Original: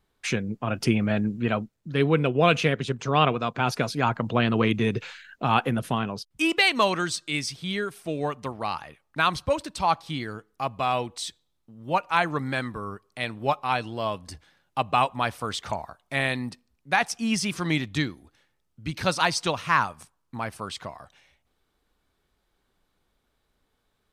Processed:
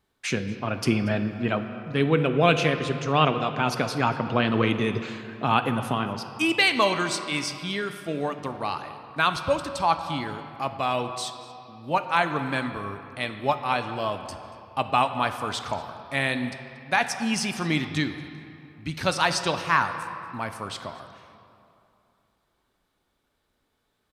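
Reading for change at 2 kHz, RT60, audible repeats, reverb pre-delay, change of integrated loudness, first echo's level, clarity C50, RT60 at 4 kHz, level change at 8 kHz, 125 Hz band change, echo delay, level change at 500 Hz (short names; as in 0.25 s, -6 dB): +0.5 dB, 2.7 s, 1, 3 ms, +0.5 dB, -21.0 dB, 9.0 dB, 1.7 s, 0.0 dB, -0.5 dB, 0.234 s, +0.5 dB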